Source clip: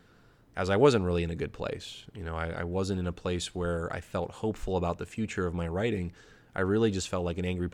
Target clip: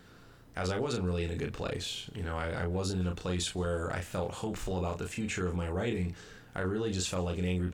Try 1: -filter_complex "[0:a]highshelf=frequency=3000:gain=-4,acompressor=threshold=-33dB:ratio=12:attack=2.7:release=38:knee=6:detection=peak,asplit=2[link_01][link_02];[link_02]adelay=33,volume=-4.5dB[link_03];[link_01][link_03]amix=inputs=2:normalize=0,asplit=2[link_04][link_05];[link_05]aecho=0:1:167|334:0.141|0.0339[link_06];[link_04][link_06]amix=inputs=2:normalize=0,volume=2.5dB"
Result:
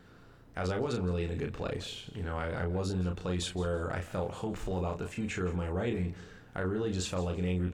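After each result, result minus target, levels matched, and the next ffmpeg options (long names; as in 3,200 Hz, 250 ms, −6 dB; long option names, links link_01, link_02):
echo-to-direct +9.5 dB; 8,000 Hz band −4.5 dB
-filter_complex "[0:a]highshelf=frequency=3000:gain=-4,acompressor=threshold=-33dB:ratio=12:attack=2.7:release=38:knee=6:detection=peak,asplit=2[link_01][link_02];[link_02]adelay=33,volume=-4.5dB[link_03];[link_01][link_03]amix=inputs=2:normalize=0,asplit=2[link_04][link_05];[link_05]aecho=0:1:167|334:0.0473|0.0114[link_06];[link_04][link_06]amix=inputs=2:normalize=0,volume=2.5dB"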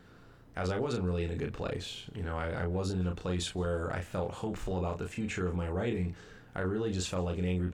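8,000 Hz band −4.5 dB
-filter_complex "[0:a]highshelf=frequency=3000:gain=4,acompressor=threshold=-33dB:ratio=12:attack=2.7:release=38:knee=6:detection=peak,asplit=2[link_01][link_02];[link_02]adelay=33,volume=-4.5dB[link_03];[link_01][link_03]amix=inputs=2:normalize=0,asplit=2[link_04][link_05];[link_05]aecho=0:1:167|334:0.0473|0.0114[link_06];[link_04][link_06]amix=inputs=2:normalize=0,volume=2.5dB"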